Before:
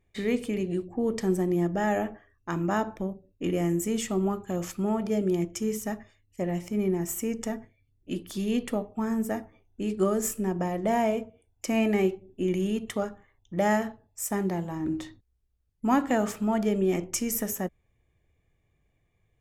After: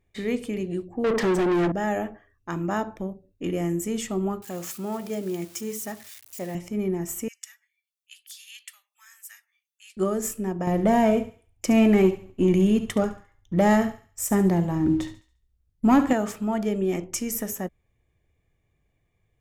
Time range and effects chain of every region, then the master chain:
1.04–1.72 high shelf 8700 Hz -11.5 dB + overdrive pedal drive 29 dB, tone 2800 Hz, clips at -15.5 dBFS
4.42–6.55 switching spikes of -33.5 dBFS + HPF 84 Hz + low shelf 410 Hz -6 dB
7.28–9.97 Bessel high-pass 2700 Hz, order 6 + high shelf 11000 Hz +3.5 dB
10.67–16.13 sample leveller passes 1 + low shelf 290 Hz +8 dB + thinning echo 70 ms, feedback 39%, high-pass 640 Hz, level -12.5 dB
whole clip: dry

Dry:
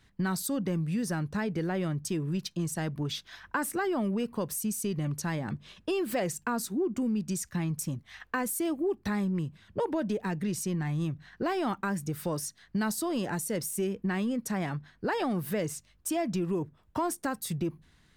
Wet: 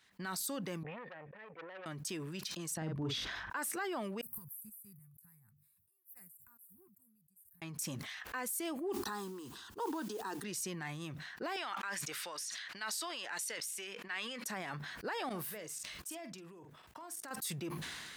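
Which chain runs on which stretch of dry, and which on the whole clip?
0.83–1.86 vocal tract filter e + core saturation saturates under 1300 Hz
2.77–3.5 tilt -4.5 dB/oct + doubler 44 ms -8 dB
4.21–7.62 weighting filter A + compressor 4:1, threshold -43 dBFS + inverse Chebyshev band-stop 270–6500 Hz, stop band 50 dB
8.92–10.44 fixed phaser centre 590 Hz, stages 6 + modulation noise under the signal 30 dB
11.56–14.44 band-pass 2700 Hz, Q 0.68 + sustainer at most 21 dB/s
15.29–17.31 level quantiser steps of 22 dB + doubler 47 ms -12.5 dB
whole clip: HPF 1100 Hz 6 dB/oct; limiter -29.5 dBFS; sustainer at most 24 dB/s

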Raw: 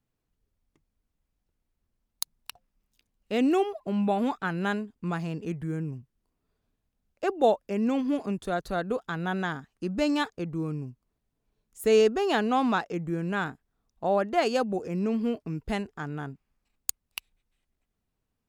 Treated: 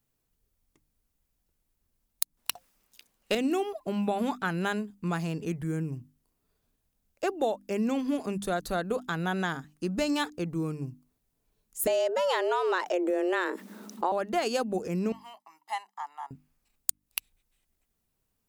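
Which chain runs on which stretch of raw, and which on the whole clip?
2.37–3.35 high shelf 5200 Hz +9.5 dB + overdrive pedal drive 19 dB, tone 3400 Hz, clips at -11 dBFS + mismatched tape noise reduction decoder only
11.87–14.12 high shelf 6300 Hz -8.5 dB + frequency shift +180 Hz + fast leveller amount 50%
15.12–16.31 ladder high-pass 800 Hz, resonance 70% + comb 1 ms, depth 97%
whole clip: high shelf 6400 Hz +12 dB; notches 50/100/150/200/250/300 Hz; compressor 6:1, threshold -25 dBFS; gain +1 dB

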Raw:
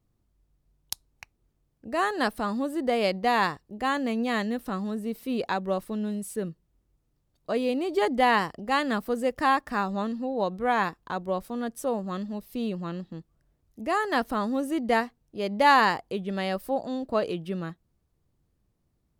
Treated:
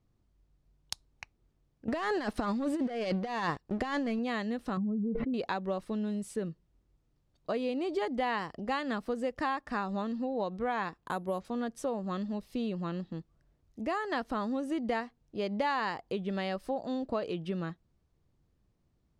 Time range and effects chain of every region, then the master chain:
1.88–4.19 sample leveller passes 2 + negative-ratio compressor -24 dBFS, ratio -0.5
4.77–5.34 spectral contrast raised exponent 1.9 + LPF 1500 Hz 24 dB/oct + fast leveller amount 100%
10.98–11.45 HPF 67 Hz + careless resampling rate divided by 4×, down filtered, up hold
whole clip: LPF 6500 Hz 12 dB/oct; compressor 4:1, threshold -30 dBFS

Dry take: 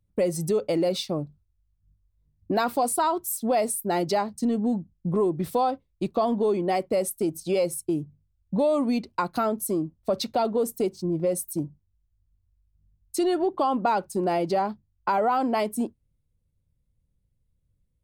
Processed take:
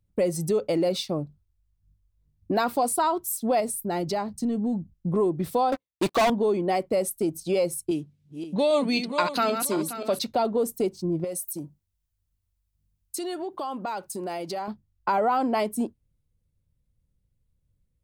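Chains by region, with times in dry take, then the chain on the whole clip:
3.6–4.94 low shelf 170 Hz +8 dB + compressor 1.5:1, threshold -31 dBFS
5.72–6.3 HPF 820 Hz 6 dB/oct + sample leveller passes 5
7.91–10.19 regenerating reverse delay 0.265 s, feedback 52%, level -7 dB + weighting filter D
11.24–14.68 tilt +2 dB/oct + compressor 2.5:1, threshold -31 dBFS
whole clip: dry

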